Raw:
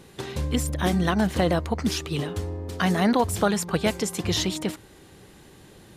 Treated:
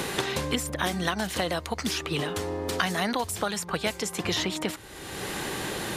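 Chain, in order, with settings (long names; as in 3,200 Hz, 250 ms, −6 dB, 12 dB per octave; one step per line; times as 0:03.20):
low-shelf EQ 470 Hz −11.5 dB
multiband upward and downward compressor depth 100%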